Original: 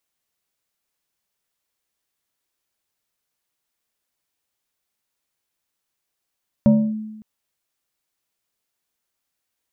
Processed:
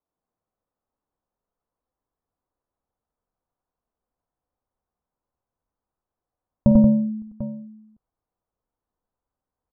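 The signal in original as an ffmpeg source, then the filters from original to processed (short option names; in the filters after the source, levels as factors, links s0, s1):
-f lavfi -i "aevalsrc='0.398*pow(10,-3*t/1.08)*sin(2*PI*216*t+0.64*clip(1-t/0.28,0,1)*sin(2*PI*1.67*216*t))':d=0.56:s=44100"
-filter_complex "[0:a]lowpass=f=1100:w=0.5412,lowpass=f=1100:w=1.3066,asubboost=boost=2:cutoff=130,asplit=2[s0][s1];[s1]aecho=0:1:52|92|96|181|745:0.2|0.531|0.708|0.531|0.2[s2];[s0][s2]amix=inputs=2:normalize=0"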